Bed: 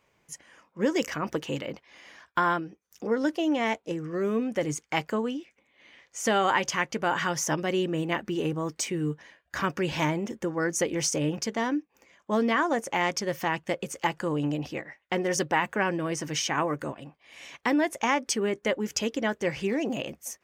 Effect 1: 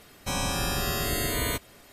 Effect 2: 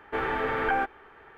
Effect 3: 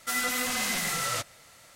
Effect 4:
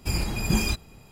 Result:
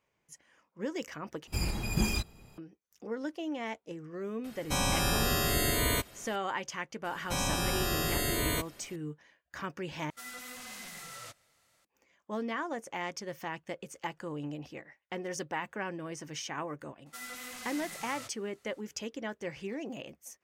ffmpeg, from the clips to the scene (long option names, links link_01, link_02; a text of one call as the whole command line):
ffmpeg -i bed.wav -i cue0.wav -i cue1.wav -i cue2.wav -i cue3.wav -filter_complex "[1:a]asplit=2[link_01][link_02];[3:a]asplit=2[link_03][link_04];[0:a]volume=-10.5dB,asplit=3[link_05][link_06][link_07];[link_05]atrim=end=1.474[link_08];[4:a]atrim=end=1.11,asetpts=PTS-STARTPTS,volume=-5.5dB[link_09];[link_06]atrim=start=2.576:end=10.104[link_10];[link_03]atrim=end=1.75,asetpts=PTS-STARTPTS,volume=-16dB[link_11];[link_07]atrim=start=11.846[link_12];[link_01]atrim=end=1.92,asetpts=PTS-STARTPTS,volume=-0.5dB,afade=type=in:duration=0.004:curve=hsin,afade=type=out:start_time=1.916:duration=0.004:curve=hsin,adelay=4440[link_13];[link_02]atrim=end=1.92,asetpts=PTS-STARTPTS,volume=-3dB,afade=type=in:duration=0.004:curve=hsin,afade=type=out:start_time=1.916:duration=0.004:curve=hsin,adelay=7040[link_14];[link_04]atrim=end=1.75,asetpts=PTS-STARTPTS,volume=-15dB,afade=type=in:duration=0.004:curve=hsin,afade=type=out:start_time=1.746:duration=0.004:curve=hsin,adelay=17060[link_15];[link_08][link_09]acrossfade=duration=0.004:curve1=hsin:curve2=hsin[link_16];[link_16][link_10]acrossfade=duration=0.004:curve1=hsin:curve2=hsin[link_17];[link_17][link_11]acrossfade=duration=0.004:curve1=hsin:curve2=hsin[link_18];[link_18][link_12]acrossfade=duration=0.004:curve1=hsin:curve2=hsin[link_19];[link_19][link_13][link_14][link_15]amix=inputs=4:normalize=0" out.wav